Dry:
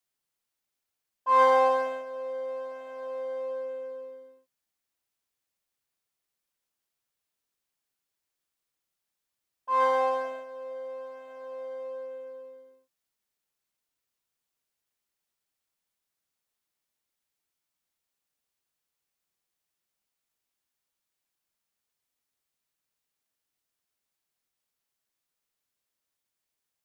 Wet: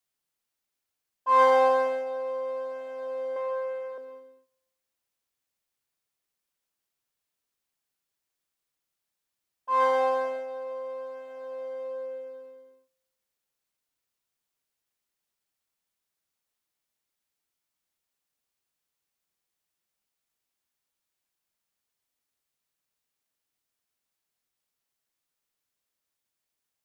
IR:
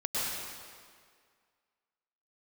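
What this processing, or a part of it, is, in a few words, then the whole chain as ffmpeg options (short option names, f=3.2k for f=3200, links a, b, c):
keyed gated reverb: -filter_complex "[0:a]asettb=1/sr,asplit=3[a][b][c];[a]atrim=end=3.364[d];[b]atrim=start=3.36:end=3.98,asetpts=PTS-STARTPTS,afade=t=in:d=0.004:c=qsin,afade=t=out:st=0.616:d=0.004:c=qsin,equalizer=f=250:t=o:w=1:g=-12,equalizer=f=1k:t=o:w=1:g=9,equalizer=f=2k:t=o:w=1:g=7[e];[c]atrim=start=3.976[f];[d][e]acrossfade=d=0.004:c1=hsin:c2=qsin[g];[g][f]acrossfade=d=0.004:c1=qsin:c2=hsin,asplit=3[h][i][j];[1:a]atrim=start_sample=2205[k];[i][k]afir=irnorm=-1:irlink=0[l];[j]apad=whole_len=1183805[m];[l][m]sidechaingate=range=-25dB:threshold=-46dB:ratio=16:detection=peak,volume=-19dB[n];[h][n]amix=inputs=2:normalize=0"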